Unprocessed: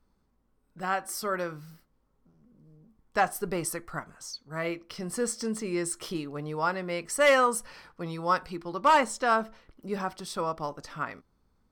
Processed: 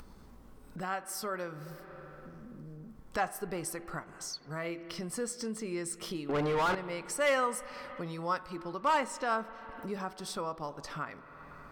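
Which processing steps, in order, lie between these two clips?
6.29–6.75 s: overdrive pedal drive 35 dB, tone 2 kHz, clips at -14.5 dBFS; spring tank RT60 2.3 s, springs 47/53 ms, chirp 40 ms, DRR 16 dB; upward compressor, threshold -25 dBFS; trim -7 dB

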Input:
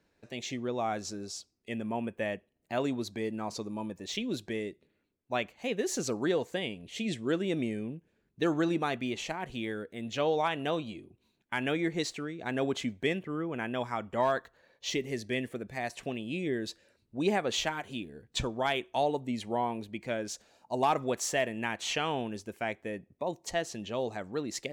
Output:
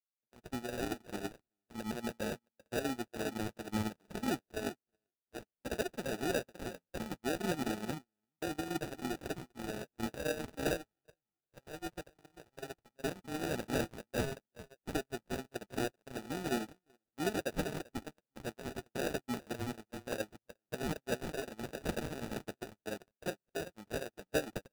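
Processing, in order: low-pass 6 kHz 12 dB/octave; compression 6:1, threshold -34 dBFS, peak gain reduction 11.5 dB; bass shelf 64 Hz -8 dB; feedback delay 390 ms, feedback 21%, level -5 dB; spring tank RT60 1.1 s, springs 47 ms, chirp 55 ms, DRR 18 dB; sample-and-hold 41×; peak limiter -31 dBFS, peak gain reduction 8.5 dB; 10.81–12.94 s: peaking EQ 250 Hz -11 dB 0.44 oct; gate -36 dBFS, range -56 dB; crackling interface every 0.26 s, samples 128, zero, from 0.36 s; trim +9.5 dB

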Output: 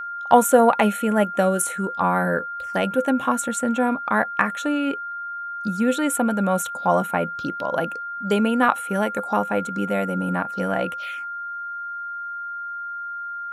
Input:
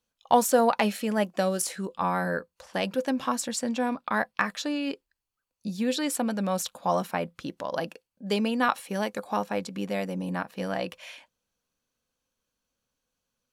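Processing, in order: touch-sensitive phaser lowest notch 300 Hz, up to 4.9 kHz, full sweep at -29.5 dBFS; whistle 1.4 kHz -35 dBFS; trim +6.5 dB

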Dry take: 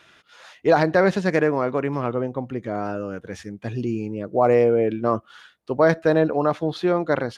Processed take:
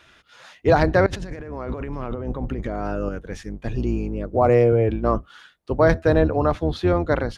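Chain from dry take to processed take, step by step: octave divider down 2 oct, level +1 dB; 1.06–3.09 s: compressor with a negative ratio -29 dBFS, ratio -1

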